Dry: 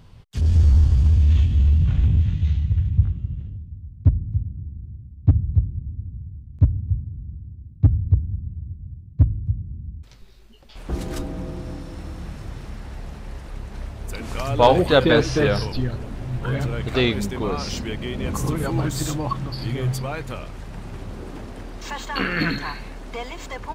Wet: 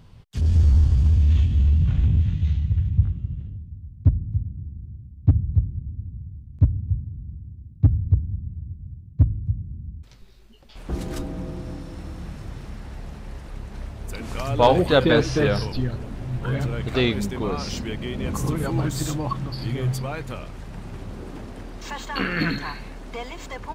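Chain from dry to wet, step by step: bell 180 Hz +2 dB 1.6 oct; gain -2 dB

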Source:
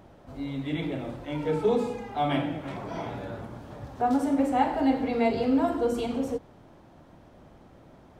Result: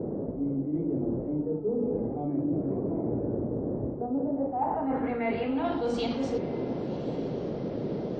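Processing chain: in parallel at -4 dB: soft clip -23 dBFS, distortion -12 dB; on the sum: low-pass sweep 370 Hz -> 4600 Hz, 3.99–5.91; band noise 120–530 Hz -34 dBFS; reverse; compressor 16:1, threshold -27 dBFS, peak gain reduction 19 dB; reverse; diffused feedback echo 1.095 s, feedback 45%, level -14.5 dB; gain +1.5 dB; WMA 64 kbps 48000 Hz

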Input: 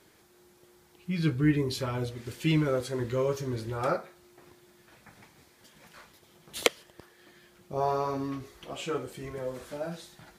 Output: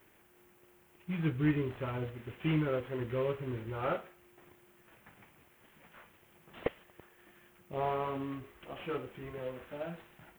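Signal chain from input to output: CVSD 16 kbps; added noise violet -65 dBFS; gain -4.5 dB

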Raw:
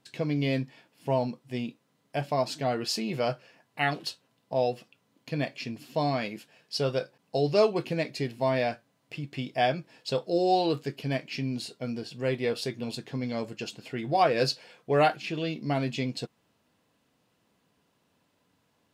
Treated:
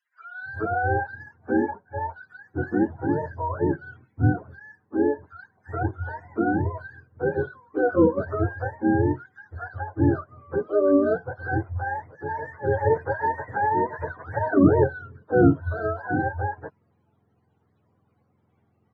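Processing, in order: spectrum mirrored in octaves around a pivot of 460 Hz; 12.35–14.42 bell 1200 Hz +8 dB 2.6 oct; bands offset in time highs, lows 0.42 s, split 1800 Hz; gain +5.5 dB

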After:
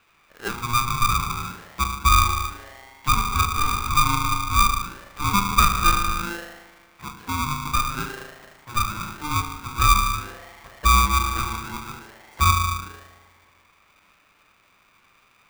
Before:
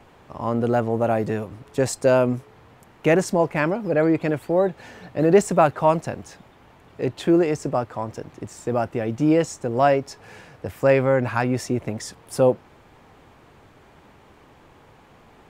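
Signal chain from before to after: spring tank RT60 2.3 s, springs 37 ms, chirp 30 ms, DRR 2.5 dB; auto-wah 590–1900 Hz, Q 6, down, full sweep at -17.5 dBFS; polarity switched at an audio rate 600 Hz; gain +4.5 dB

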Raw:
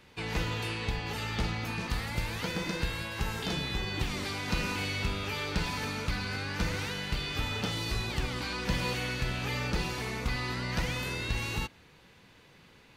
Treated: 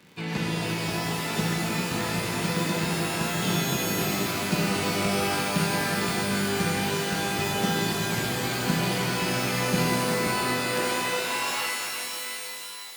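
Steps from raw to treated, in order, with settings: high-pass sweep 170 Hz -> 3400 Hz, 10.22–12.4; crackle 44/s -39 dBFS; shimmer reverb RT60 3.4 s, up +12 st, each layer -2 dB, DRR -0.5 dB

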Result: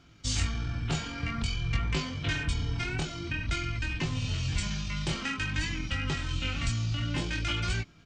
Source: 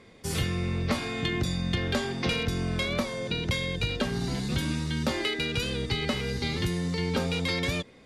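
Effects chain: tone controls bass +7 dB, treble +13 dB; pitch shift -7.5 st; chorus 0.51 Hz, delay 18.5 ms, depth 6.8 ms; gain -3.5 dB

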